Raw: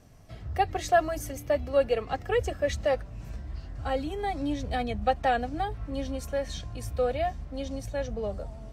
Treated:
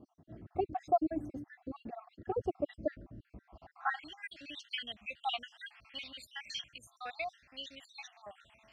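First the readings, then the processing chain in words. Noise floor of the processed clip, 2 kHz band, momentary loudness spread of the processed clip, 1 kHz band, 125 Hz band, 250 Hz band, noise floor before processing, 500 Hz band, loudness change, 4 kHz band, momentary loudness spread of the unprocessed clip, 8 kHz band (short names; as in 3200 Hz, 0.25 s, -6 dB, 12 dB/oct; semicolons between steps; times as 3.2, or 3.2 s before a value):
-76 dBFS, -7.5 dB, 17 LU, -9.0 dB, -18.0 dB, -7.5 dB, -44 dBFS, -12.5 dB, -9.5 dB, -0.5 dB, 12 LU, -15.0 dB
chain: random spectral dropouts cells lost 62%; bell 460 Hz -11 dB 0.6 oct; reverse; upward compressor, threshold -46 dBFS; reverse; dynamic EQ 780 Hz, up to +4 dB, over -49 dBFS, Q 5.7; band-pass sweep 340 Hz -> 2700 Hz, 3.33–4.16; gain +8.5 dB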